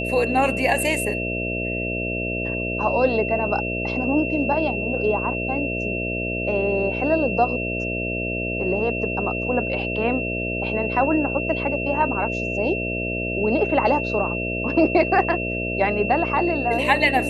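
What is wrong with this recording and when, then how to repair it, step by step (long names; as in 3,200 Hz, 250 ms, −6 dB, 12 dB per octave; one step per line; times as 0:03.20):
mains buzz 60 Hz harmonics 11 −28 dBFS
whistle 2,700 Hz −27 dBFS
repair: hum removal 60 Hz, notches 11
notch filter 2,700 Hz, Q 30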